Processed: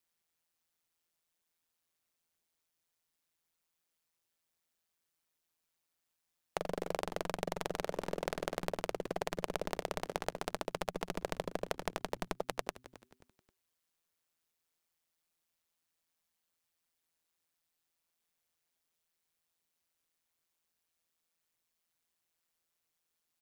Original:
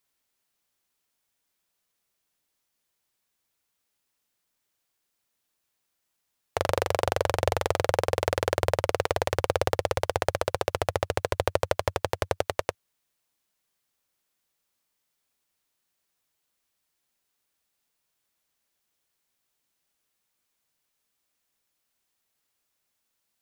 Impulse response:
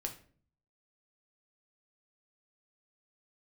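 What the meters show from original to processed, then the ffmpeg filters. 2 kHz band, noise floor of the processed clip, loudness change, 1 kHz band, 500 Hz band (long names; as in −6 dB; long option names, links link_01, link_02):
−11.0 dB, −85 dBFS, −11.5 dB, −11.5 dB, −12.0 dB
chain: -filter_complex "[0:a]aeval=exprs='val(0)*sin(2*PI*83*n/s)':channel_layout=same,acompressor=threshold=-28dB:ratio=6,asplit=4[link_01][link_02][link_03][link_04];[link_02]adelay=266,afreqshift=-130,volume=-17dB[link_05];[link_03]adelay=532,afreqshift=-260,volume=-25.9dB[link_06];[link_04]adelay=798,afreqshift=-390,volume=-34.7dB[link_07];[link_01][link_05][link_06][link_07]amix=inputs=4:normalize=0,volume=-3dB"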